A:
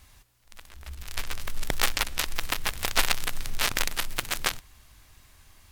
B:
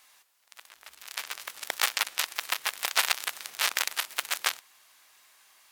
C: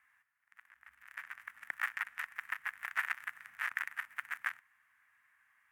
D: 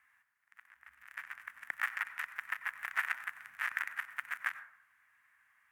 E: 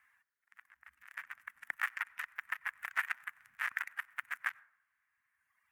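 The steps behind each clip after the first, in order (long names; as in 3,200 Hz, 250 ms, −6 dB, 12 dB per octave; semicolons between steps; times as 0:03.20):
high-pass filter 700 Hz 12 dB per octave
drawn EQ curve 110 Hz 0 dB, 270 Hz −8 dB, 390 Hz −27 dB, 1,800 Hz +5 dB, 4,100 Hz −29 dB, 10,000 Hz −19 dB; level −5.5 dB
dense smooth reverb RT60 0.67 s, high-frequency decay 0.35×, pre-delay 80 ms, DRR 13 dB; level +1 dB
reverb reduction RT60 1.9 s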